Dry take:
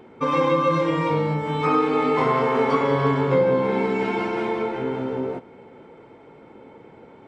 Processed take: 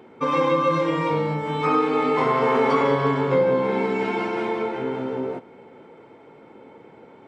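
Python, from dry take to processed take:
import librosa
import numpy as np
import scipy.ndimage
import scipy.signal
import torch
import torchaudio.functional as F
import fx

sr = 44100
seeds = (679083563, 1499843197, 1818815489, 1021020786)

y = fx.highpass(x, sr, hz=140.0, slope=6)
y = fx.env_flatten(y, sr, amount_pct=50, at=(2.42, 2.95))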